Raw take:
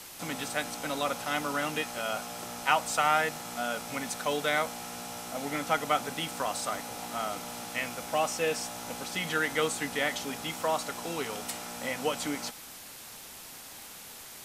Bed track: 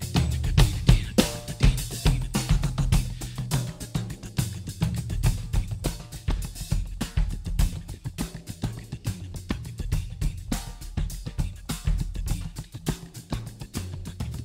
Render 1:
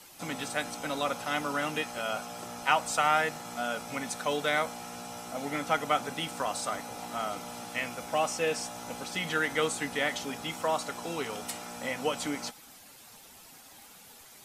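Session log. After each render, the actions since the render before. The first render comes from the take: noise reduction 9 dB, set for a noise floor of -47 dBFS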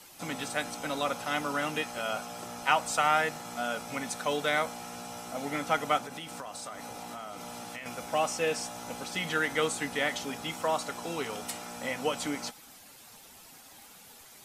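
5.98–7.86 s: compression, threshold -37 dBFS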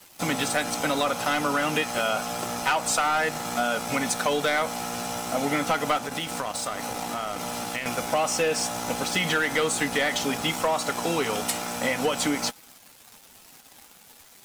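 waveshaping leveller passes 3; compression, threshold -21 dBFS, peak gain reduction 7.5 dB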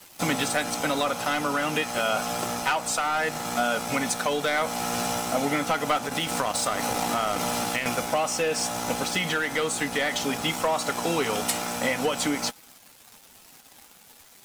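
gain riding 0.5 s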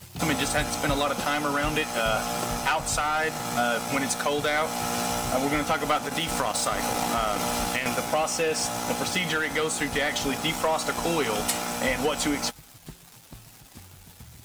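add bed track -15.5 dB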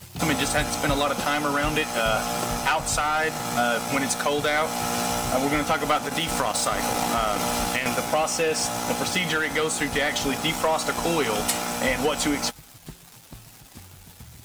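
trim +2 dB

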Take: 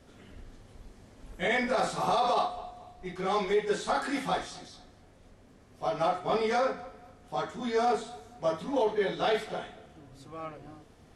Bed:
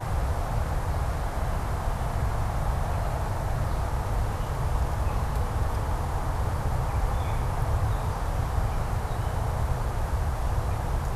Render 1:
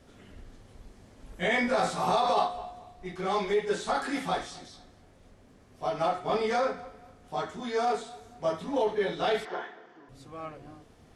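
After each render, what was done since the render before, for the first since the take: 1.35–2.80 s: doubling 17 ms -4.5 dB; 7.60–8.21 s: bass shelf 240 Hz -6.5 dB; 9.45–10.09 s: cabinet simulation 330–5300 Hz, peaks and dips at 360 Hz +7 dB, 600 Hz -5 dB, 980 Hz +9 dB, 1.7 kHz +9 dB, 2.6 kHz -5 dB, 3.9 kHz -6 dB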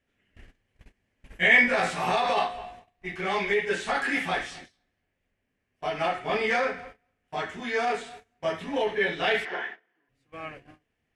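gate -45 dBFS, range -23 dB; high-order bell 2.2 kHz +11.5 dB 1.1 oct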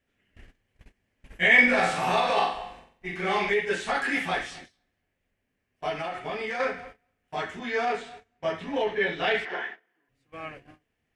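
1.54–3.50 s: flutter echo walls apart 7.7 m, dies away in 0.49 s; 5.98–6.60 s: compression 4:1, threshold -29 dBFS; 7.59–9.50 s: distance through air 59 m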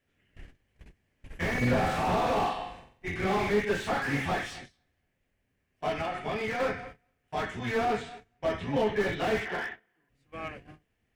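octave divider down 1 oct, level 0 dB; slew-rate limiter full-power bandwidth 48 Hz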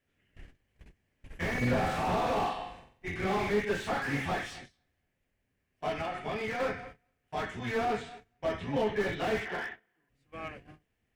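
trim -2.5 dB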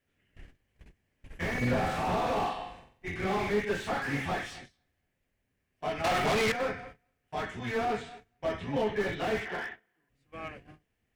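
6.04–6.52 s: waveshaping leveller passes 5

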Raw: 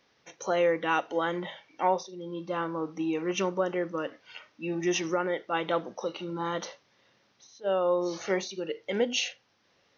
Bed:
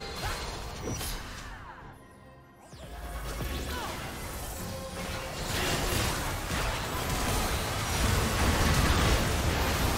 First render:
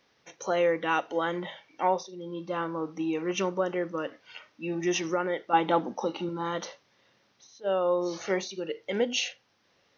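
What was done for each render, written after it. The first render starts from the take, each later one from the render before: 5.53–6.29 s: small resonant body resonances 250/830 Hz, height 11 dB, ringing for 25 ms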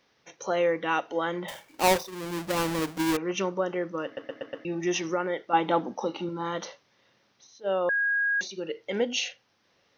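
1.48–3.17 s: square wave that keeps the level; 4.05 s: stutter in place 0.12 s, 5 plays; 7.89–8.41 s: bleep 1.64 kHz -22.5 dBFS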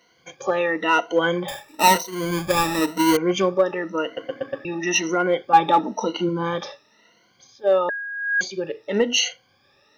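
drifting ripple filter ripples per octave 1.9, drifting +0.98 Hz, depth 20 dB; in parallel at -6 dB: overload inside the chain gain 16 dB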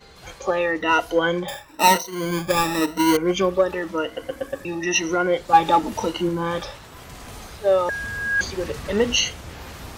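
add bed -9.5 dB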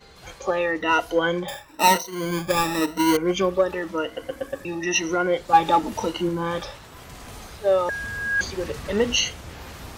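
trim -1.5 dB

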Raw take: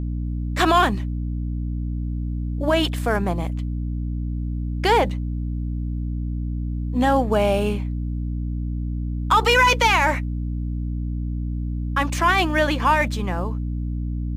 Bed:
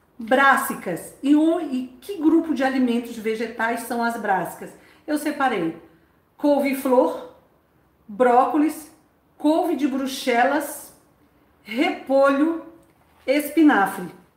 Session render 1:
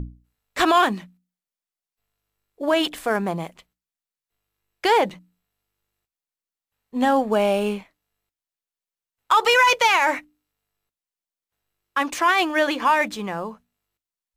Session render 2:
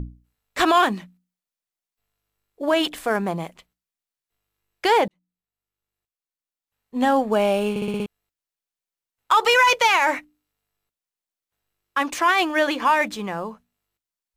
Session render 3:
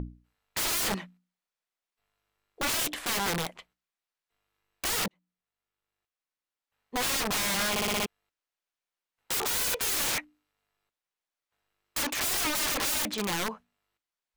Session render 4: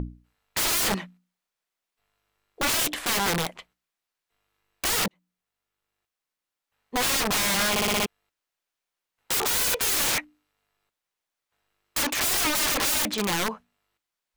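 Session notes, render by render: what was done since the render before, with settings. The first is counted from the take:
hum notches 60/120/180/240/300 Hz
5.08–7.06 s: fade in linear; 7.70 s: stutter in place 0.06 s, 6 plays
overdrive pedal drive 9 dB, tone 2.4 kHz, clips at -7.5 dBFS; integer overflow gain 24 dB
trim +4.5 dB

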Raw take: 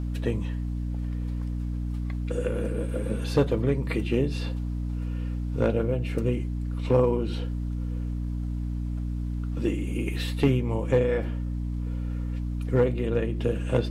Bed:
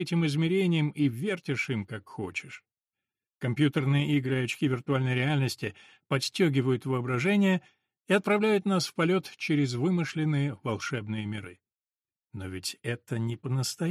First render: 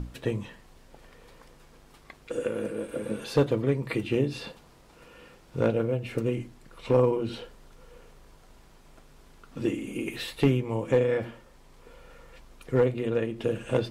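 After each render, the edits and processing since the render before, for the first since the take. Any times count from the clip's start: hum notches 60/120/180/240/300 Hz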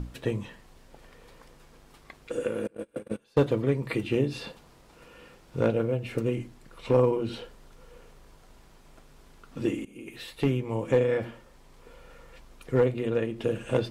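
2.67–3.43 s: gate -32 dBFS, range -26 dB; 9.85–10.82 s: fade in, from -16.5 dB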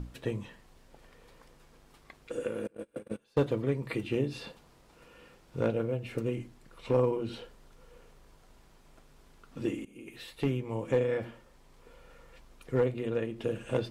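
trim -4.5 dB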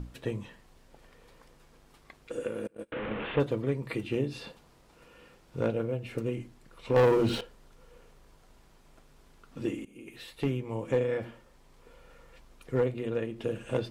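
2.92–3.40 s: one-bit delta coder 16 kbps, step -29 dBFS; 6.96–7.41 s: waveshaping leveller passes 3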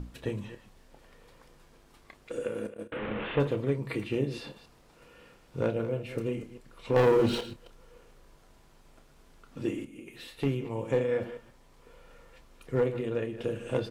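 chunks repeated in reverse 137 ms, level -12.5 dB; doubling 29 ms -11.5 dB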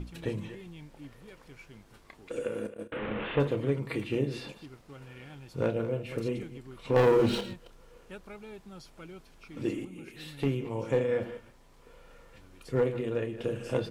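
add bed -21.5 dB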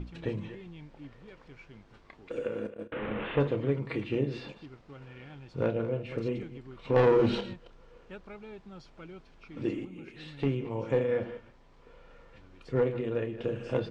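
Gaussian low-pass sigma 1.6 samples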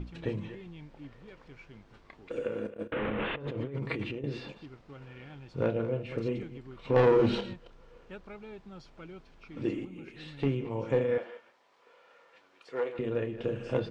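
2.80–4.24 s: compressor with a negative ratio -35 dBFS; 11.18–12.99 s: high-pass 570 Hz

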